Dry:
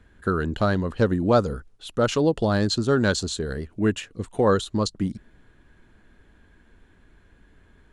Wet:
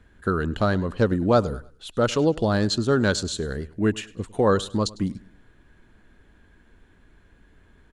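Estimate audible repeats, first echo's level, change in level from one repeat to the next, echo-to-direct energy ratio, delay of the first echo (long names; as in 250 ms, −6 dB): 2, −21.0 dB, −9.0 dB, −20.5 dB, 102 ms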